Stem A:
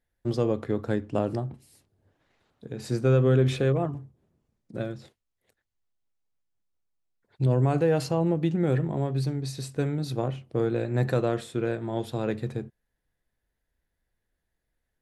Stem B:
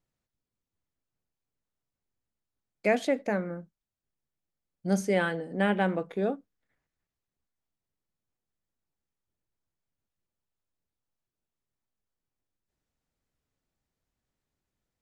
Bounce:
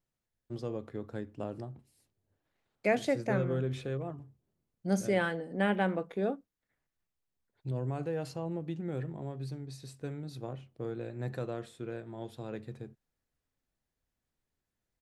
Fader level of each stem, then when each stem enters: -12.0 dB, -3.0 dB; 0.25 s, 0.00 s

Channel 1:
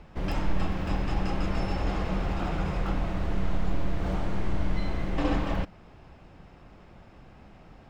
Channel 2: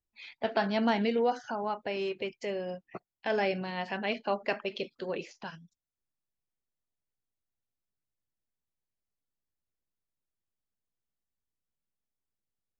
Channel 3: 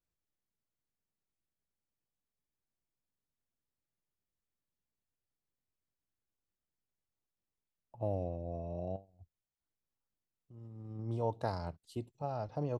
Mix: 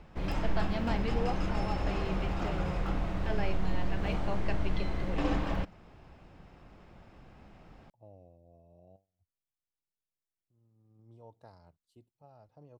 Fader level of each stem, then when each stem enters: -3.5 dB, -8.0 dB, -19.0 dB; 0.00 s, 0.00 s, 0.00 s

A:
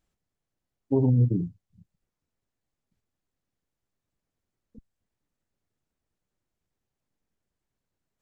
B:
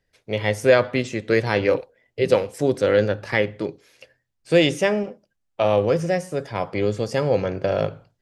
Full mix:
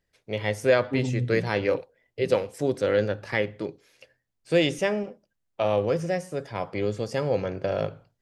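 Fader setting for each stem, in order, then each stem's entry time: -7.0 dB, -5.0 dB; 0.00 s, 0.00 s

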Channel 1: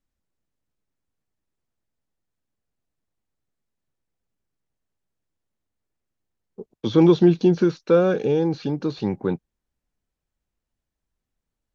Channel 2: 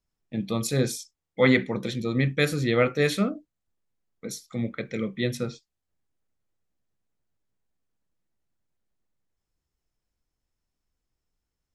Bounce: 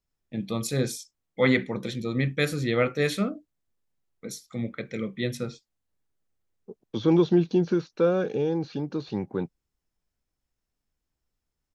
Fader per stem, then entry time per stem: -5.5 dB, -2.0 dB; 0.10 s, 0.00 s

